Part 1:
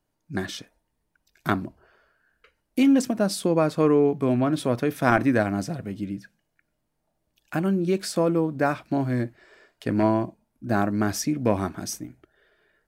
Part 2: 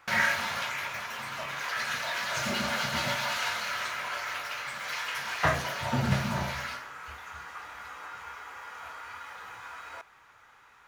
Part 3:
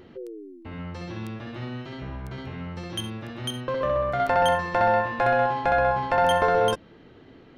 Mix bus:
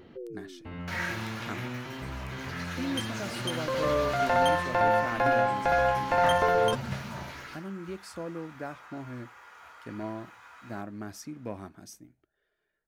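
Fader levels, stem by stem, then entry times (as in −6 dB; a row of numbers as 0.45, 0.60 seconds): −15.5, −8.0, −3.0 decibels; 0.00, 0.80, 0.00 seconds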